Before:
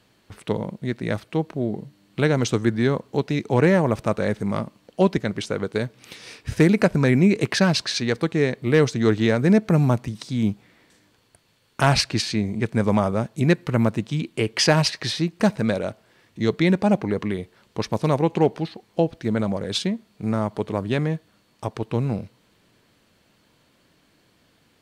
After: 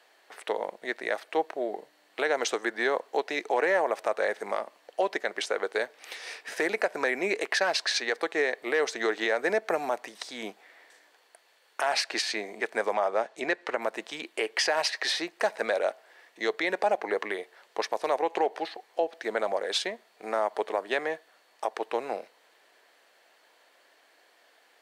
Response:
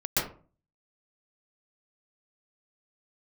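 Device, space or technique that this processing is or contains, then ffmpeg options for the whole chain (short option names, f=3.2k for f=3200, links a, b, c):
laptop speaker: -filter_complex "[0:a]highpass=f=420:w=0.5412,highpass=f=420:w=1.3066,equalizer=f=740:t=o:w=0.57:g=7,equalizer=f=1.8k:t=o:w=0.5:g=7,alimiter=limit=-14.5dB:level=0:latency=1:release=153,asettb=1/sr,asplit=3[a][b][c];[a]atrim=end=12.934[d];[b]atrim=start=12.93:end=13.82,asetpts=PTS-STARTPTS,afade=t=in:d=0.004:c=qsin,afade=t=out:st=0.886:d=0.004:c=qsin,lowpass=6.6k[e];[c]atrim=start=13.816[f];[d][e]acrossfade=d=0.004:c1=hsin:c2=qsin[g];[g][f]acrossfade=d=0.004:c1=qsin:c2=hsin,volume=-1dB"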